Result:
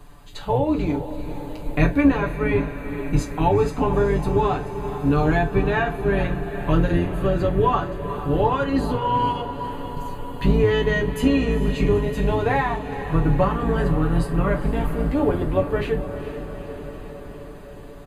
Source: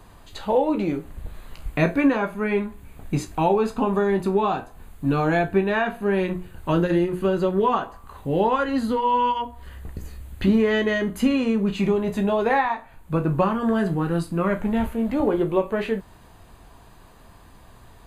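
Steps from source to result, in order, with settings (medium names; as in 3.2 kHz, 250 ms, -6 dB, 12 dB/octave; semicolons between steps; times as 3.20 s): octave divider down 2 oct, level +3 dB; comb 6.9 ms, depth 69%; echo that smears into a reverb 452 ms, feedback 70%, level -11 dB; trim -2 dB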